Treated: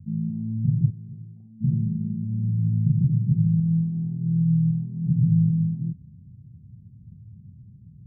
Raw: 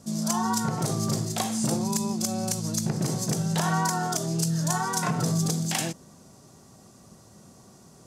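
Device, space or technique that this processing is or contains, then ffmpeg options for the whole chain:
the neighbour's flat through the wall: -filter_complex "[0:a]asplit=3[link_01][link_02][link_03];[link_01]afade=type=out:start_time=0.89:duration=0.02[link_04];[link_02]highpass=frequency=1300:poles=1,afade=type=in:start_time=0.89:duration=0.02,afade=type=out:start_time=1.6:duration=0.02[link_05];[link_03]afade=type=in:start_time=1.6:duration=0.02[link_06];[link_04][link_05][link_06]amix=inputs=3:normalize=0,lowpass=frequency=160:width=0.5412,lowpass=frequency=160:width=1.3066,equalizer=frequency=100:width_type=o:width=0.87:gain=7,volume=8dB"

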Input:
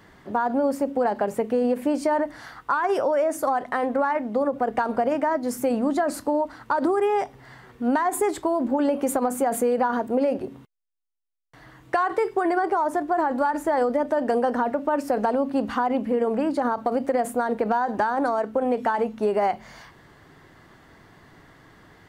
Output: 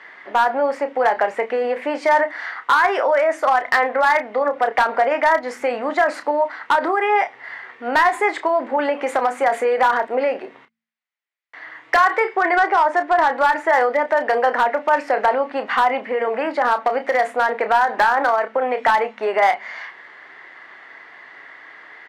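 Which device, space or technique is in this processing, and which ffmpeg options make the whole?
megaphone: -filter_complex "[0:a]highpass=640,lowpass=3500,equalizer=frequency=2000:width_type=o:width=0.55:gain=10.5,asoftclip=type=hard:threshold=-17.5dB,asplit=2[link_01][link_02];[link_02]adelay=31,volume=-10dB[link_03];[link_01][link_03]amix=inputs=2:normalize=0,asettb=1/sr,asplit=3[link_04][link_05][link_06];[link_04]atrim=end=12.244[link_07];[link_05]atrim=start=12.24:end=13.35,asetpts=PTS-STARTPTS,afade=type=in:duration=0.004:curve=qsin,afade=type=out:start_time=1.106:duration=0.004:curve=qsin,lowpass=9200[link_08];[link_06]atrim=start=13.346[link_09];[link_07][link_08]acrossfade=duration=0.004:curve1=hsin:curve2=qsin[link_10];[link_10][link_09]acrossfade=duration=0.004:curve1=qsin:curve2=hsin,bandreject=frequency=56.81:width_type=h:width=4,bandreject=frequency=113.62:width_type=h:width=4,bandreject=frequency=170.43:width_type=h:width=4,bandreject=frequency=227.24:width_type=h:width=4,volume=8dB"

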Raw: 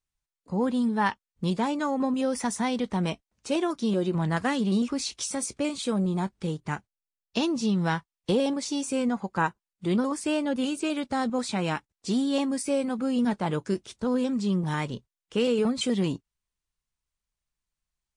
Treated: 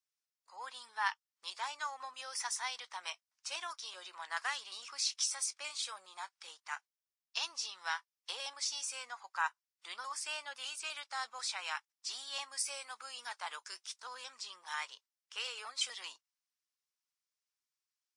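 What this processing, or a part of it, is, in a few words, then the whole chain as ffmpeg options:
headphones lying on a table: -filter_complex "[0:a]highpass=frequency=1000:width=0.5412,highpass=frequency=1000:width=1.3066,equalizer=frequency=5300:width_type=o:width=0.43:gain=7.5,asettb=1/sr,asplit=3[link_01][link_02][link_03];[link_01]atrim=end=12.594[link_04];[link_02]atrim=start=12.59:end=14.07,asetpts=PTS-STARTPTS,afade=type=in:duration=0.004:curve=qsin,afade=type=out:start_time=1.476:duration=0.004:curve=qsin,highshelf=frequency=6500:gain=5[link_05];[link_03]atrim=start=14.066[link_06];[link_04][link_05]acrossfade=duration=0.004:curve1=hsin:curve2=qsin[link_07];[link_07][link_06]acrossfade=duration=0.004:curve1=qsin:curve2=hsin,volume=-5dB"

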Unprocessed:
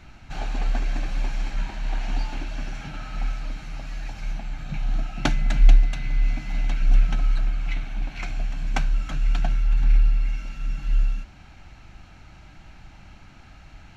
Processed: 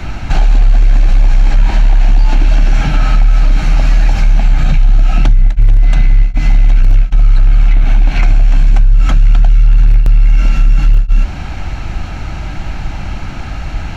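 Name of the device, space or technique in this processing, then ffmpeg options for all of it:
mastering chain: -filter_complex "[0:a]equalizer=frequency=190:width_type=o:width=2.2:gain=-3.5,acrossover=split=98|1700[link_01][link_02][link_03];[link_01]acompressor=threshold=-21dB:ratio=4[link_04];[link_02]acompressor=threshold=-43dB:ratio=4[link_05];[link_03]acompressor=threshold=-46dB:ratio=4[link_06];[link_04][link_05][link_06]amix=inputs=3:normalize=0,acompressor=threshold=-30dB:ratio=1.5,asoftclip=type=tanh:threshold=-22dB,tiltshelf=frequency=850:gain=3.5,asoftclip=type=hard:threshold=-21.5dB,alimiter=level_in=25dB:limit=-1dB:release=50:level=0:latency=1,volume=-1dB"

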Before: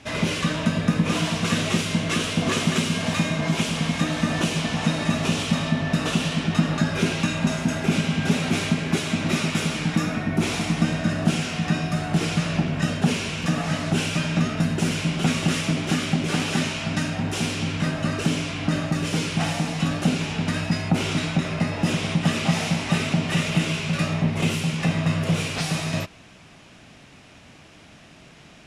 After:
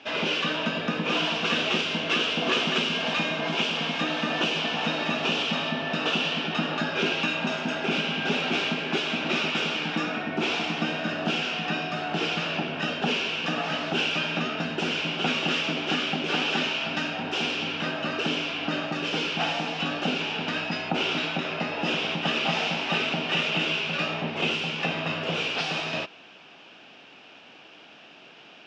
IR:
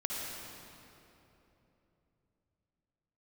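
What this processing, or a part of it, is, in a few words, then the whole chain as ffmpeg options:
phone earpiece: -af "highpass=420,equalizer=frequency=610:width_type=q:width=4:gain=-4,equalizer=frequency=1100:width_type=q:width=4:gain=-5,equalizer=frequency=2000:width_type=q:width=4:gain=-9,equalizer=frequency=2800:width_type=q:width=4:gain=4,equalizer=frequency=4100:width_type=q:width=4:gain=-5,lowpass=frequency=4400:width=0.5412,lowpass=frequency=4400:width=1.3066,volume=3.5dB"

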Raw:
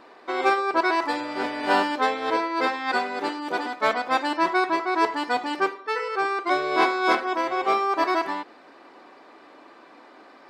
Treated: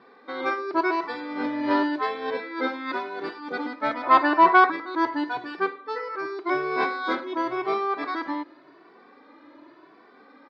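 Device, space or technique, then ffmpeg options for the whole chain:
barber-pole flanger into a guitar amplifier: -filter_complex "[0:a]asplit=3[link_01][link_02][link_03];[link_01]afade=type=out:start_time=4.02:duration=0.02[link_04];[link_02]equalizer=frequency=900:width_type=o:width=2.6:gain=14.5,afade=type=in:start_time=4.02:duration=0.02,afade=type=out:start_time=4.7:duration=0.02[link_05];[link_03]afade=type=in:start_time=4.7:duration=0.02[link_06];[link_04][link_05][link_06]amix=inputs=3:normalize=0,asplit=2[link_07][link_08];[link_08]adelay=2.2,afreqshift=0.89[link_09];[link_07][link_09]amix=inputs=2:normalize=1,asoftclip=type=tanh:threshold=-5dB,highpass=110,equalizer=frequency=130:width_type=q:width=4:gain=10,equalizer=frequency=290:width_type=q:width=4:gain=7,equalizer=frequency=730:width_type=q:width=4:gain=-6,equalizer=frequency=2800:width_type=q:width=4:gain=-8,lowpass=frequency=4500:width=0.5412,lowpass=frequency=4500:width=1.3066"

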